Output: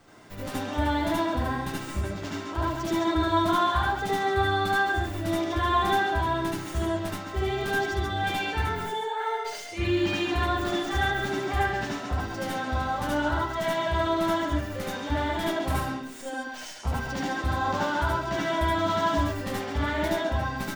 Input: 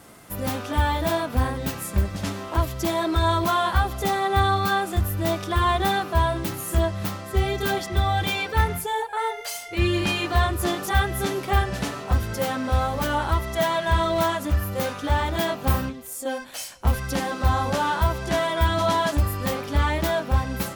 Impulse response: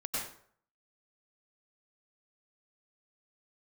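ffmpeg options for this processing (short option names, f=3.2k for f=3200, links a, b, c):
-filter_complex "[0:a]acrossover=split=160|7700[a][b][c];[b]aecho=1:1:136:0.531[d];[c]aeval=exprs='abs(val(0))':c=same[e];[a][d][e]amix=inputs=3:normalize=0[f];[1:a]atrim=start_sample=2205,afade=t=out:st=0.16:d=0.01,atrim=end_sample=7497,asetrate=57330,aresample=44100[g];[f][g]afir=irnorm=-1:irlink=0,volume=-2.5dB"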